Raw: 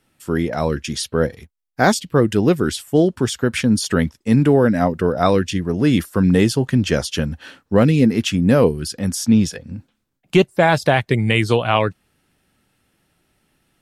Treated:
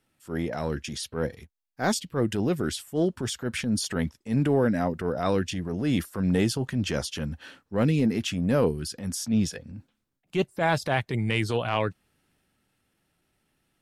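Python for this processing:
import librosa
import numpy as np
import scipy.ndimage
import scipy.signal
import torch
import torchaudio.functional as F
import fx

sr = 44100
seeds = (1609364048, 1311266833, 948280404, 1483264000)

y = fx.transient(x, sr, attack_db=-8, sustain_db=2)
y = F.gain(torch.from_numpy(y), -8.0).numpy()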